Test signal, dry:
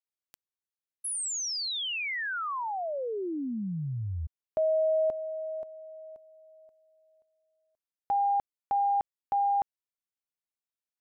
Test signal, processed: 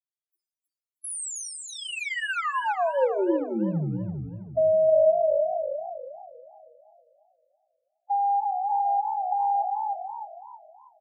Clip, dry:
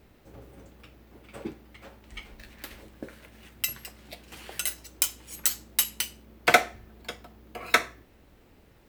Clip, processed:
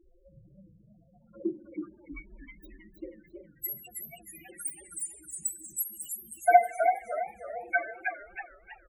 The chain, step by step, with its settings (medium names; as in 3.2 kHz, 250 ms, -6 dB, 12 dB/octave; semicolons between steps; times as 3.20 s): in parallel at -8 dB: overload inside the chain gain 21 dB; on the sum: touch-sensitive phaser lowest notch 160 Hz, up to 4.5 kHz, full sweep at -32.5 dBFS; bass shelf 170 Hz -3.5 dB; comb 5.8 ms, depth 79%; on a send: thinning echo 311 ms, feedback 34%, high-pass 260 Hz, level -11 dB; on the sum: Schroeder reverb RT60 1.1 s, combs from 31 ms, DRR 12.5 dB; loudest bins only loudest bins 4; dynamic bell 480 Hz, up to +6 dB, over -40 dBFS, Q 1.4; hum notches 60/120/180/240/300/360/420/480/540 Hz; modulated delay 322 ms, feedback 37%, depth 148 cents, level -6 dB